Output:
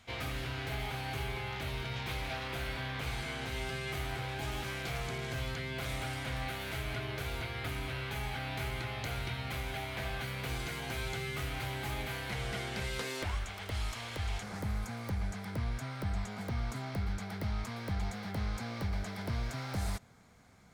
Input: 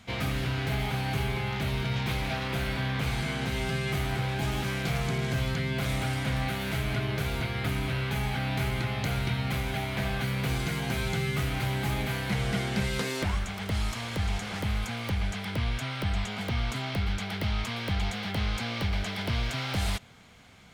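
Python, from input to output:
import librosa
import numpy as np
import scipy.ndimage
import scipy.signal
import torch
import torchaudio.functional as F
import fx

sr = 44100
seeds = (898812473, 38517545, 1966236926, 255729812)

y = fx.peak_eq(x, sr, hz=fx.steps((0.0, 180.0), (14.43, 3000.0)), db=-12.0, octaves=0.8)
y = y * librosa.db_to_amplitude(-5.5)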